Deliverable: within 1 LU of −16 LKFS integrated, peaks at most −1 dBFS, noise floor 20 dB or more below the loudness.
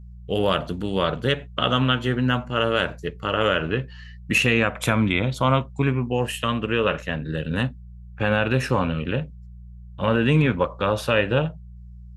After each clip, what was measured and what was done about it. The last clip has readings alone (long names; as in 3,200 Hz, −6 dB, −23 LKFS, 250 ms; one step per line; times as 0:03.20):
mains hum 60 Hz; hum harmonics up to 180 Hz; level of the hum −39 dBFS; integrated loudness −23.0 LKFS; sample peak −6.0 dBFS; target loudness −16.0 LKFS
→ hum removal 60 Hz, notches 3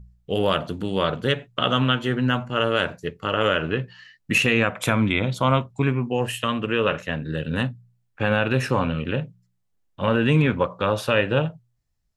mains hum none found; integrated loudness −23.0 LKFS; sample peak −6.0 dBFS; target loudness −16.0 LKFS
→ level +7 dB
brickwall limiter −1 dBFS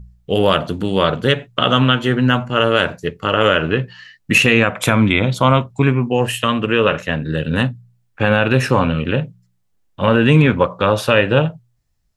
integrated loudness −16.0 LKFS; sample peak −1.0 dBFS; background noise floor −64 dBFS